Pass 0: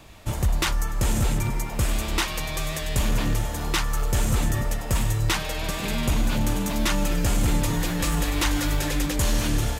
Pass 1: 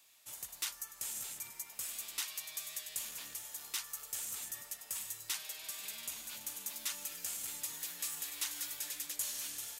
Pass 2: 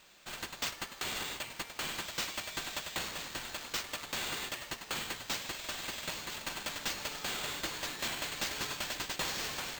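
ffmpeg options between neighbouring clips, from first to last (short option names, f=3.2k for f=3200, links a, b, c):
-af "aderivative,volume=-7.5dB"
-af "acrusher=samples=4:mix=1:aa=0.000001,asoftclip=type=tanh:threshold=-32.5dB,volume=5dB"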